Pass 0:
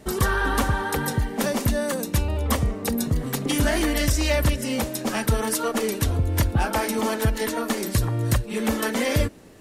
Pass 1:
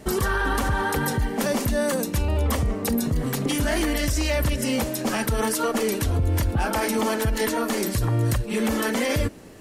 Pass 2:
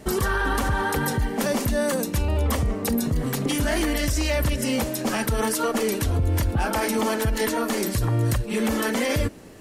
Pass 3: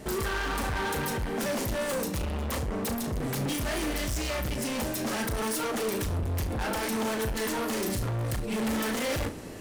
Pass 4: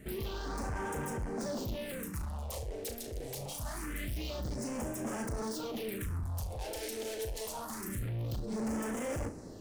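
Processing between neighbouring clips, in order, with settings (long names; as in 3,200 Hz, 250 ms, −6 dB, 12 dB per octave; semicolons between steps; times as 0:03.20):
notch filter 3,700 Hz, Q 27; in parallel at −1 dB: compressor whose output falls as the input rises −24 dBFS; on the sum: brickwall limiter −11.5 dBFS, peak gain reduction 6 dB; level −3 dB
no processing that can be heard
speech leveller 2 s; hard clipping −29 dBFS, distortion −6 dB; on a send: flutter between parallel walls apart 6.2 metres, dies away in 0.24 s
all-pass phaser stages 4, 0.25 Hz, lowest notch 180–4,000 Hz; level −6.5 dB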